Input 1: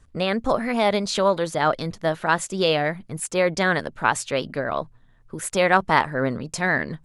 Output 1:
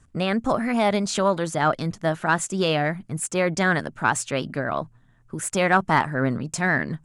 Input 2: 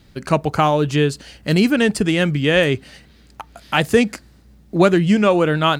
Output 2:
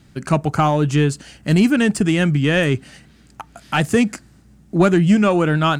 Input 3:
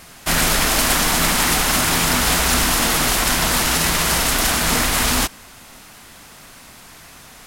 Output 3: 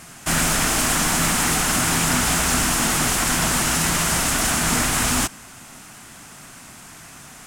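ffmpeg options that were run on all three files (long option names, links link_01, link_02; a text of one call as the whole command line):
ffmpeg -i in.wav -filter_complex "[0:a]equalizer=frequency=125:width_type=o:width=1:gain=5,equalizer=frequency=500:width_type=o:width=1:gain=-10,equalizer=frequency=1000:width_type=o:width=1:gain=-7,equalizer=frequency=2000:width_type=o:width=1:gain=-6,equalizer=frequency=4000:width_type=o:width=1:gain=-8,equalizer=frequency=8000:width_type=o:width=1:gain=7,asplit=2[link_01][link_02];[link_02]highpass=frequency=720:poles=1,volume=18dB,asoftclip=type=tanh:threshold=0dB[link_03];[link_01][link_03]amix=inputs=2:normalize=0,lowpass=frequency=1500:poles=1,volume=-6dB" out.wav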